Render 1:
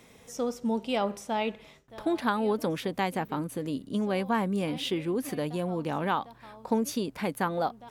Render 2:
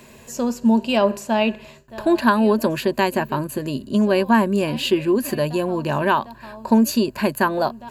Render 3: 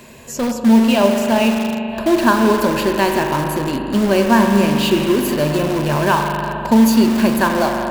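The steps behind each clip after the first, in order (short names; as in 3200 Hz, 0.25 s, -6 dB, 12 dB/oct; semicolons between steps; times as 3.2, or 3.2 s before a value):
ripple EQ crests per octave 1.4, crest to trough 11 dB; gain +8.5 dB
spring tank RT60 2.7 s, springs 40 ms, chirp 30 ms, DRR 3.5 dB; in parallel at -9.5 dB: wrapped overs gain 18 dB; on the sum: gain +2 dB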